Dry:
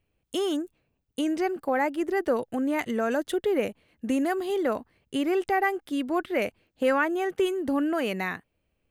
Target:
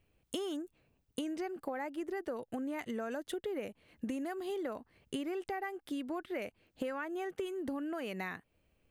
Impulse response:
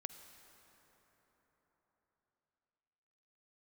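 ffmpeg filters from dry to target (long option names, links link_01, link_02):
-af "acompressor=threshold=-38dB:ratio=8,volume=2dB"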